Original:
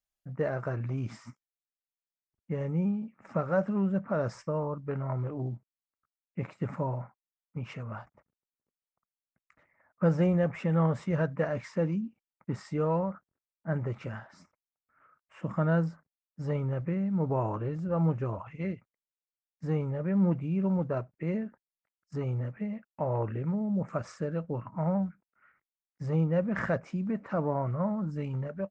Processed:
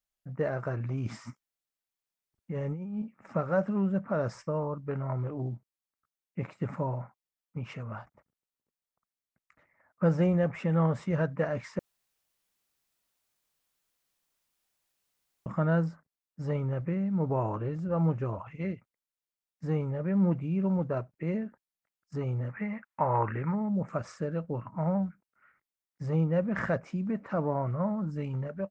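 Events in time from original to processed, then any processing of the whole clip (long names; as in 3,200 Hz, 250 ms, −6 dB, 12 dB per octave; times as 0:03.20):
0:01.05–0:03.02: compressor whose output falls as the input rises −34 dBFS
0:11.79–0:15.46: fill with room tone
0:22.49–0:23.69: flat-topped bell 1,400 Hz +11.5 dB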